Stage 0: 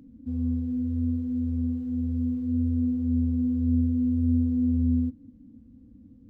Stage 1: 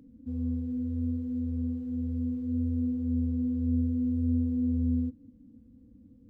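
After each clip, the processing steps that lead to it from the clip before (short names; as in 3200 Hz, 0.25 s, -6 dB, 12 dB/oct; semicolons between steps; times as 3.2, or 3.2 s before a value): bell 490 Hz +6.5 dB 0.22 oct; gain -4 dB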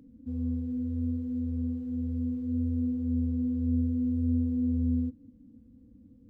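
nothing audible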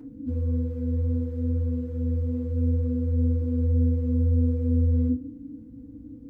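FDN reverb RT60 0.38 s, low-frequency decay 1.05×, high-frequency decay 0.25×, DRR -4.5 dB; gain +4 dB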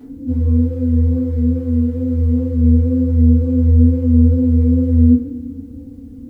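wow and flutter 49 cents; two-slope reverb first 0.49 s, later 2.4 s, DRR -8 dB; requantised 12-bit, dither triangular; gain +2 dB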